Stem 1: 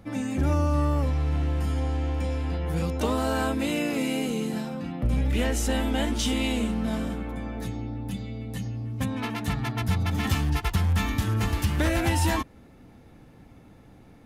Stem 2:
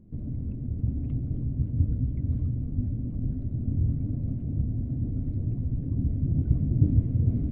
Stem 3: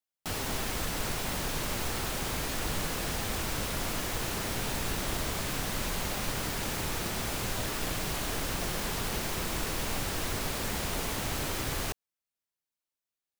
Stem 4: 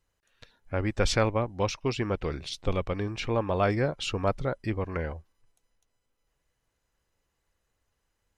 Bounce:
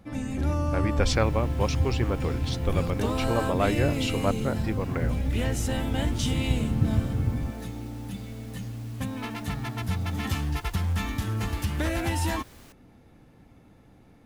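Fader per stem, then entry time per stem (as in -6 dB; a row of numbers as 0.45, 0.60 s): -3.5, -3.0, -19.0, 0.0 dB; 0.00, 0.00, 0.80, 0.00 s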